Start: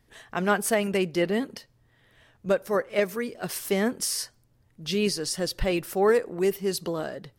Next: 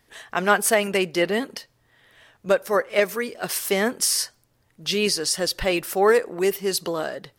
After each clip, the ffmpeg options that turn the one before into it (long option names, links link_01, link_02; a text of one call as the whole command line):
ffmpeg -i in.wav -af "lowshelf=frequency=310:gain=-11.5,volume=7dB" out.wav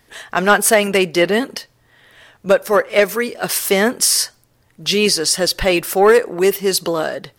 ffmpeg -i in.wav -af "acontrast=64,volume=1dB" out.wav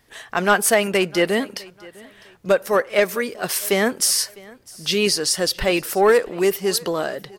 ffmpeg -i in.wav -af "aecho=1:1:654|1308:0.0708|0.0219,volume=-4dB" out.wav